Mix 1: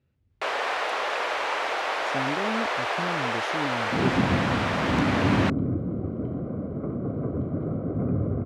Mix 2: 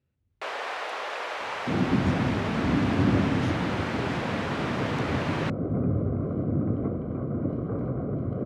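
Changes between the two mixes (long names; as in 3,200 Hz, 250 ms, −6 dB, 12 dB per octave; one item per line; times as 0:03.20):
speech −5.5 dB
first sound −5.5 dB
second sound: entry −2.25 s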